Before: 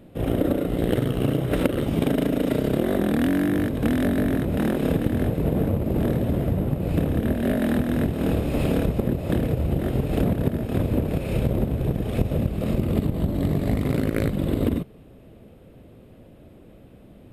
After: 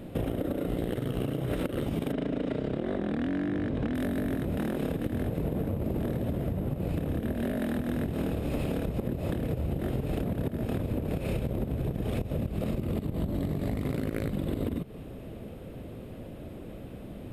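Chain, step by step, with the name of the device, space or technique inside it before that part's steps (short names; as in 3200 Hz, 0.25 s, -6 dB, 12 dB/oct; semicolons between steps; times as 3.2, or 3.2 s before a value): 2.12–3.95 air absorption 120 m; serial compression, peaks first (compressor, threshold -28 dBFS, peak gain reduction 13 dB; compressor 3:1, threshold -34 dBFS, peak gain reduction 7.5 dB); gain +6 dB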